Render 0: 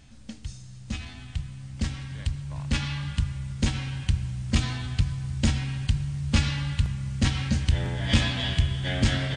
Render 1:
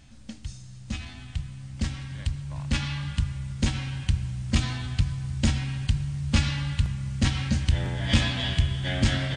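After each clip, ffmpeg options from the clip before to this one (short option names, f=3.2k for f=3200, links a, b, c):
-af "bandreject=f=440:w=12"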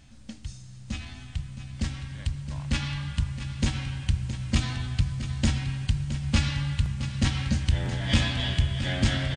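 -af "aecho=1:1:668:0.266,volume=-1dB"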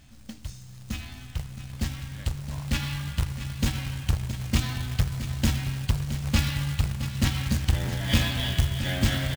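-af "acrusher=bits=3:mode=log:mix=0:aa=0.000001"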